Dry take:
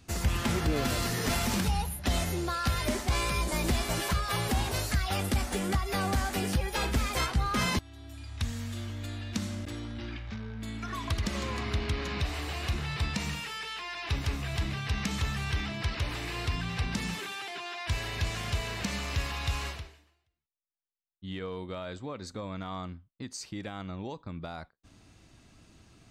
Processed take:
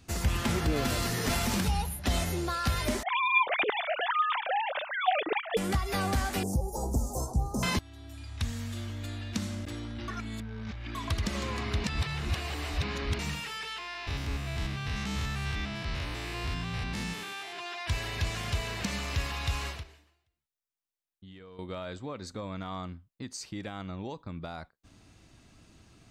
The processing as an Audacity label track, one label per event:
3.030000	5.570000	formants replaced by sine waves
6.430000	7.630000	Chebyshev band-stop 840–6300 Hz, order 3
10.080000	10.950000	reverse
11.840000	13.190000	reverse
13.780000	17.590000	spectrogram pixelated in time every 100 ms
19.830000	21.590000	compression, threshold -47 dBFS

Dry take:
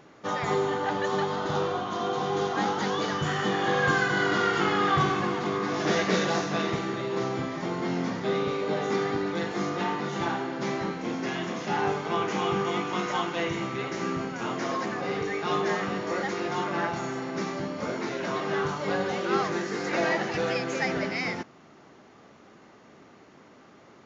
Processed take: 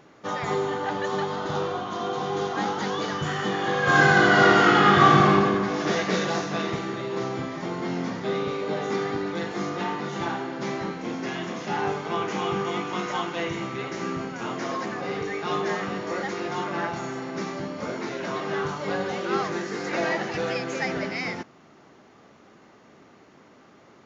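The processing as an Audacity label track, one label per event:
3.810000	5.310000	reverb throw, RT60 1.8 s, DRR -7 dB

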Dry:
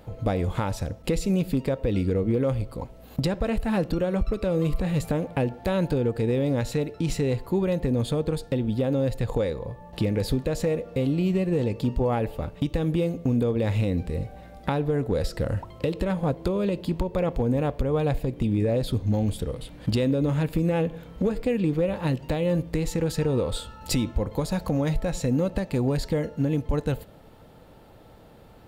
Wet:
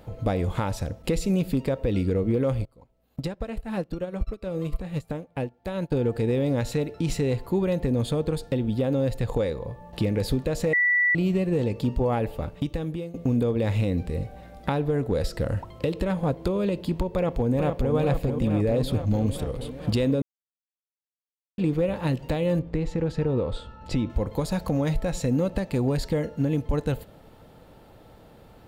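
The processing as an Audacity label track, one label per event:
2.650000	5.920000	upward expansion 2.5:1, over -34 dBFS
10.730000	11.150000	bleep 1.96 kHz -18 dBFS
12.480000	13.140000	fade out, to -13.5 dB
17.120000	17.940000	echo throw 440 ms, feedback 75%, level -6 dB
20.220000	21.580000	mute
22.590000	24.100000	tape spacing loss at 10 kHz 21 dB

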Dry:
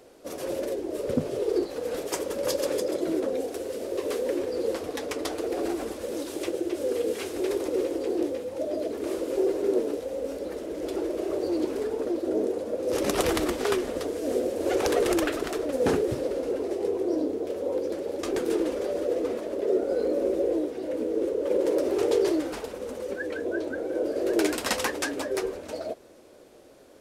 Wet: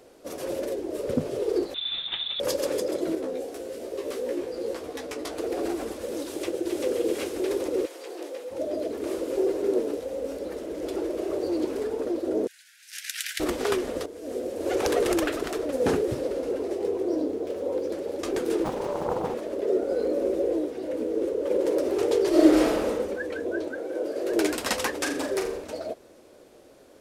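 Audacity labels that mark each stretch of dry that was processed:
1.740000	2.400000	frequency inversion carrier 4 kHz
3.150000	5.370000	chorus 1.1 Hz, delay 15 ms, depth 2.4 ms
6.260000	6.850000	echo throw 390 ms, feedback 50%, level -2.5 dB
7.850000	8.500000	high-pass 1.1 kHz -> 470 Hz
12.470000	13.400000	steep high-pass 1.5 kHz 96 dB/octave
14.060000	14.840000	fade in, from -12 dB
16.780000	17.900000	median filter over 3 samples
18.640000	19.340000	loudspeaker Doppler distortion depth 0.73 ms
22.290000	22.880000	reverb throw, RT60 1.1 s, DRR -10 dB
23.680000	24.320000	bass shelf 200 Hz -11 dB
24.970000	25.640000	flutter echo walls apart 7.1 m, dies away in 0.44 s

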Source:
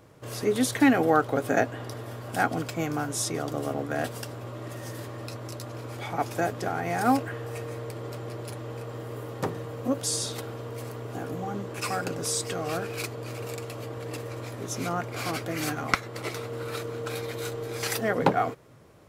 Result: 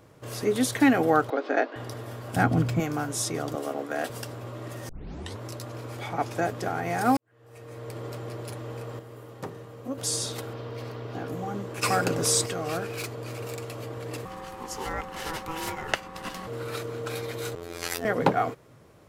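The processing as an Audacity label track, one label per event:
1.300000	1.760000	elliptic band-pass 300–4700 Hz
2.360000	2.800000	tone controls bass +13 dB, treble -4 dB
3.550000	4.100000	high-pass 280 Hz
4.890000	4.890000	tape start 0.52 s
6.090000	6.490000	treble shelf 11 kHz -10 dB
7.170000	7.960000	fade in quadratic
8.990000	9.980000	feedback comb 67 Hz, decay 1.9 s
10.530000	11.280000	resonant high shelf 6.2 kHz -10 dB, Q 1.5
11.830000	12.460000	gain +5.5 dB
12.960000	13.610000	overload inside the chain gain 28 dB
14.250000	16.470000	ring modulator 650 Hz
17.550000	18.050000	robot voice 85.7 Hz

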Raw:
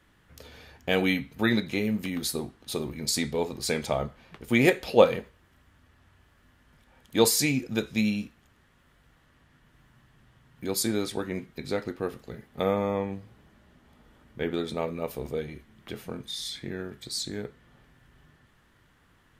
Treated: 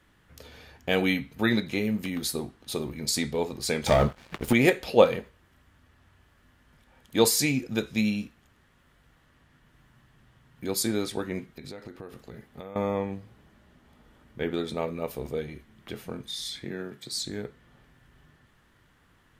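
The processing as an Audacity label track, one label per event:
3.860000	4.530000	waveshaping leveller passes 3
11.440000	12.760000	compression 8:1, threshold -37 dBFS
16.640000	17.120000	high-pass 120 Hz 24 dB/octave

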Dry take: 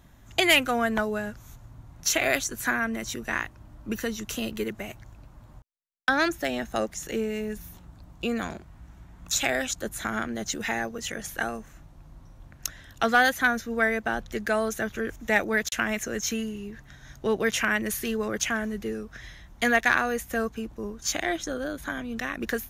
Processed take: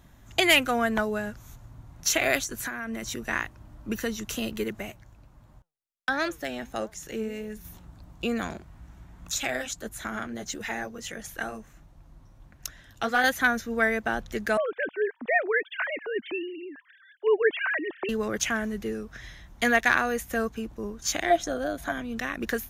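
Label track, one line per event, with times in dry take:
2.440000	3.110000	compression, threshold -29 dBFS
4.900000	7.650000	flange 1.5 Hz, delay 4.4 ms, depth 5.1 ms, regen +87%
9.310000	13.240000	flange 1.5 Hz, delay 0.9 ms, depth 9.1 ms, regen -44%
14.570000	18.090000	formants replaced by sine waves
21.300000	21.920000	peaking EQ 690 Hz +14.5 dB 0.22 oct

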